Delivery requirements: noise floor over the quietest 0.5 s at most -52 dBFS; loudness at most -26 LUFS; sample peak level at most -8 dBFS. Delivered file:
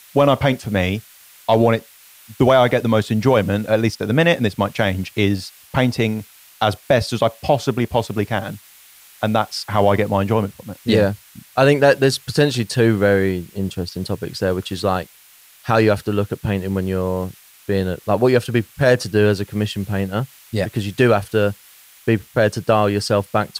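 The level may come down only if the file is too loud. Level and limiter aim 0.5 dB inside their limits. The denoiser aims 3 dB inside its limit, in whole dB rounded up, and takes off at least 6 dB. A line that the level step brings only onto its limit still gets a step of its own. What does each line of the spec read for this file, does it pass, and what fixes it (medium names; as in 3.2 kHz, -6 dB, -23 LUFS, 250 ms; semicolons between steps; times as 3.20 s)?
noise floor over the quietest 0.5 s -48 dBFS: fail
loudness -19.0 LUFS: fail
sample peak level -3.5 dBFS: fail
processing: trim -7.5 dB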